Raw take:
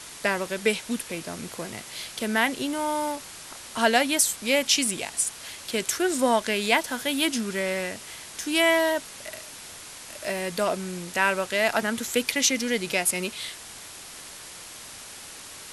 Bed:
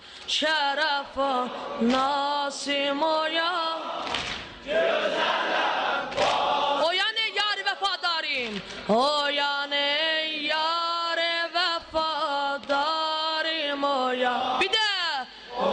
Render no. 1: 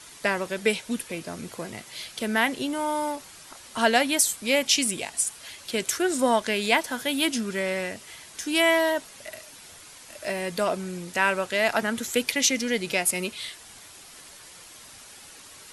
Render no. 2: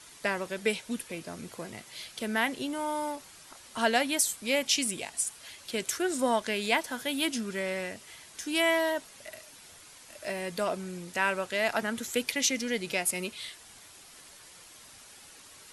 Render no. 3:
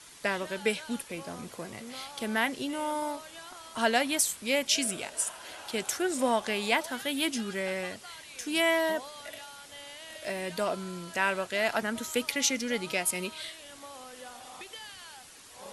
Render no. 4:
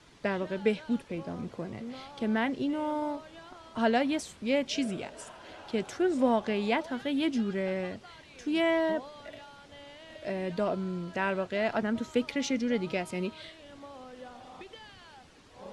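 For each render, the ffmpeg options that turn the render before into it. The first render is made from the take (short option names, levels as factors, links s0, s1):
-af "afftdn=nr=7:nf=-43"
-af "volume=0.562"
-filter_complex "[1:a]volume=0.0794[s0];[0:a][s0]amix=inputs=2:normalize=0"
-af "lowpass=4700,tiltshelf=f=660:g=6.5"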